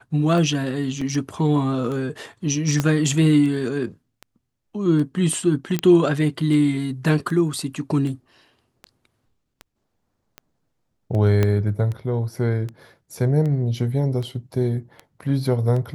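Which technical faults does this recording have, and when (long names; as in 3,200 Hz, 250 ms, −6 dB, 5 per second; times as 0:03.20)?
scratch tick 78 rpm
0:01.01: drop-out 4.4 ms
0:02.80: click −7 dBFS
0:05.79: click −8 dBFS
0:11.43: click −8 dBFS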